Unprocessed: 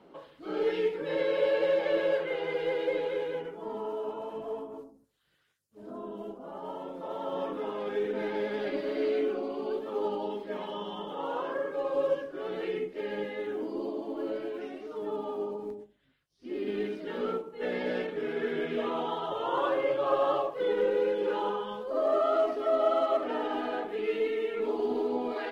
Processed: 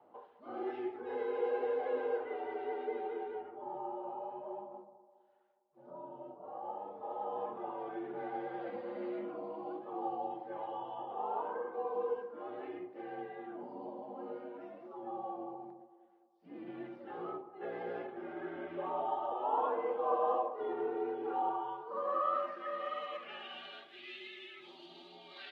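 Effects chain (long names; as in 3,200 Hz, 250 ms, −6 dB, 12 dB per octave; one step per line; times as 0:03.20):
delay with a band-pass on its return 206 ms, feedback 52%, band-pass 650 Hz, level −15 dB
frequency shifter −71 Hz
band-pass filter sweep 780 Hz → 3,600 Hz, 0:21.44–0:23.82
level +1 dB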